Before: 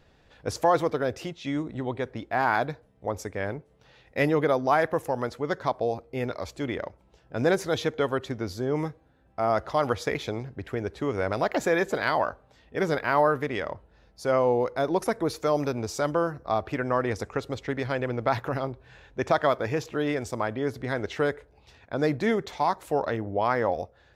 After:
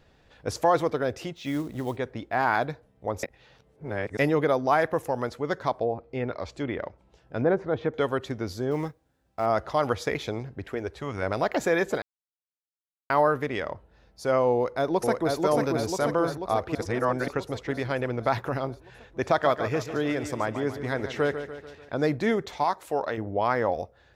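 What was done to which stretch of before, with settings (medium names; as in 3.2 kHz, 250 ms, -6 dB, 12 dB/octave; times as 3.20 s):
1.36–1.97 s: companded quantiser 6-bit
3.23–4.19 s: reverse
5.72–7.94 s: low-pass that closes with the level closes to 1.3 kHz, closed at -23 dBFS
8.71–9.46 s: companding laws mixed up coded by A
10.63–11.21 s: peaking EQ 75 Hz -> 570 Hz -11.5 dB 0.76 oct
12.02–13.10 s: mute
14.54–15.37 s: echo throw 490 ms, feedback 65%, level -2.5 dB
16.75–17.28 s: reverse
19.28–21.94 s: feedback delay 146 ms, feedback 53%, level -10.5 dB
22.64–23.18 s: bass shelf 220 Hz -10 dB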